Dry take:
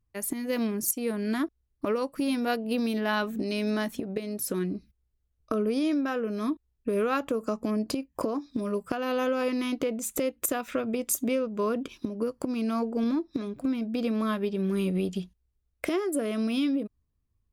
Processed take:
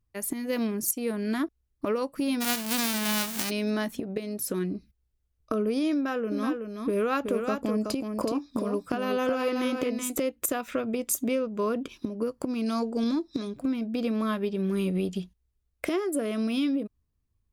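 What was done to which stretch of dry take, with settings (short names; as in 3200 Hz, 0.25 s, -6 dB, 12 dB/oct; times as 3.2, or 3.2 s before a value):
2.4–3.49 spectral whitening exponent 0.1
5.94–10.2 echo 0.374 s -5.5 dB
12.66–13.58 band shelf 5800 Hz +8.5 dB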